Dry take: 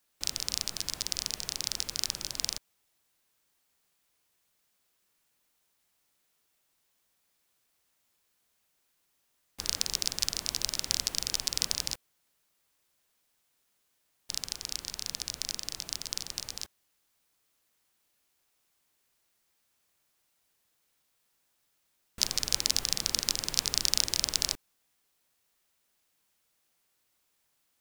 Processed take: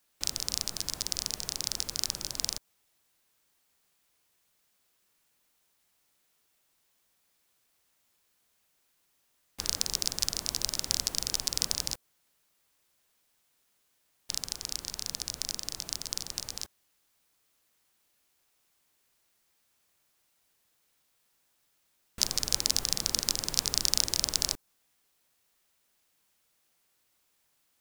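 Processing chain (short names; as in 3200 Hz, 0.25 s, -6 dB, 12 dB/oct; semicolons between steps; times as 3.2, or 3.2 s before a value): dynamic EQ 2600 Hz, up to -5 dB, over -46 dBFS, Q 0.85; gain +2 dB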